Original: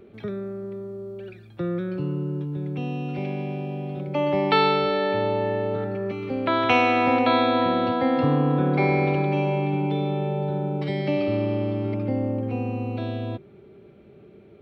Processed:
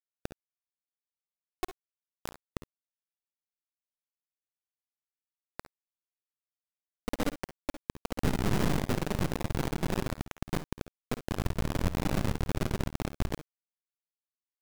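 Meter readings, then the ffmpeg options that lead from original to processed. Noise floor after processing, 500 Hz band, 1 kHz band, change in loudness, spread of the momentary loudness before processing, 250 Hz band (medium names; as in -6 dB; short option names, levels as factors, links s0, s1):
under -85 dBFS, -15.5 dB, -16.5 dB, -9.5 dB, 13 LU, -11.0 dB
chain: -filter_complex "[0:a]aeval=exprs='val(0)+0.00708*(sin(2*PI*60*n/s)+sin(2*PI*2*60*n/s)/2+sin(2*PI*3*60*n/s)/3+sin(2*PI*4*60*n/s)/4+sin(2*PI*5*60*n/s)/5)':c=same,asubboost=boost=6.5:cutoff=64,acrossover=split=280[s0][s1];[s1]acompressor=threshold=0.0224:ratio=8[s2];[s0][s2]amix=inputs=2:normalize=0,afftfilt=real='hypot(re,im)*cos(2*PI*random(0))':imag='hypot(re,im)*sin(2*PI*random(1))':win_size=512:overlap=0.75,afftfilt=real='re*gte(hypot(re,im),0.158)':imag='im*gte(hypot(re,im),0.158)':win_size=1024:overlap=0.75,acrusher=bits=3:dc=4:mix=0:aa=0.000001,aecho=1:1:54|67:0.188|0.15,volume=2.66"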